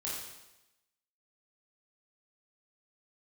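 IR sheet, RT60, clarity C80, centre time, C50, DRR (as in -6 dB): 0.95 s, 3.5 dB, 66 ms, 0.5 dB, -6.5 dB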